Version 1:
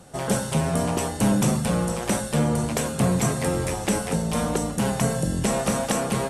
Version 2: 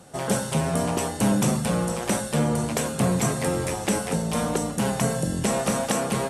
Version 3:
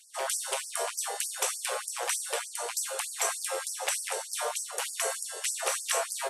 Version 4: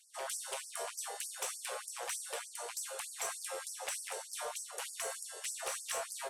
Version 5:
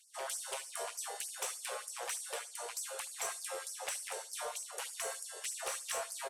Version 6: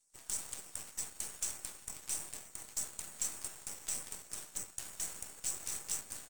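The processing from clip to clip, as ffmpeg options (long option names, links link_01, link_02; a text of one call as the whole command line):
ffmpeg -i in.wav -af "highpass=frequency=97:poles=1" out.wav
ffmpeg -i in.wav -filter_complex "[0:a]acrossover=split=120|1200[link_01][link_02][link_03];[link_02]alimiter=limit=-22dB:level=0:latency=1[link_04];[link_01][link_04][link_03]amix=inputs=3:normalize=0,afftfilt=real='re*gte(b*sr/1024,370*pow(4700/370,0.5+0.5*sin(2*PI*3.3*pts/sr)))':imag='im*gte(b*sr/1024,370*pow(4700/370,0.5+0.5*sin(2*PI*3.3*pts/sr)))':win_size=1024:overlap=0.75" out.wav
ffmpeg -i in.wav -af "asoftclip=type=tanh:threshold=-20.5dB,volume=-8dB" out.wav
ffmpeg -i in.wav -af "aecho=1:1:73|146:0.106|0.0191" out.wav
ffmpeg -i in.wav -af "bandpass=frequency=7400:width_type=q:width=2:csg=0,aeval=exprs='0.0335*(cos(1*acos(clip(val(0)/0.0335,-1,1)))-cos(1*PI/2))+0.00376*(cos(7*acos(clip(val(0)/0.0335,-1,1)))-cos(7*PI/2))+0.00266*(cos(8*acos(clip(val(0)/0.0335,-1,1)))-cos(8*PI/2))':channel_layout=same,volume=6dB" out.wav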